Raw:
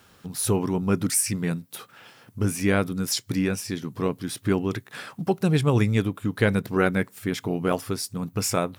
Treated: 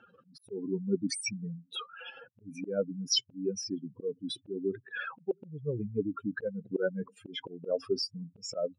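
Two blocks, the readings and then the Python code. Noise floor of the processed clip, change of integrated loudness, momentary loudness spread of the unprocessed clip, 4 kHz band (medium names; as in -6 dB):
-69 dBFS, -9.5 dB, 10 LU, -1.5 dB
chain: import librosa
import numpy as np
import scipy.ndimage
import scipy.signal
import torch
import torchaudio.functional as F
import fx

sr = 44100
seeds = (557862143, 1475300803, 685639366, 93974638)

y = fx.spec_expand(x, sr, power=3.8)
y = fx.auto_swell(y, sr, attack_ms=281.0)
y = fx.cabinet(y, sr, low_hz=440.0, low_slope=12, high_hz=5300.0, hz=(520.0, 1100.0, 1900.0, 2700.0, 4800.0), db=(7, -5, -9, 10, -5))
y = F.gain(torch.from_numpy(y), 5.0).numpy()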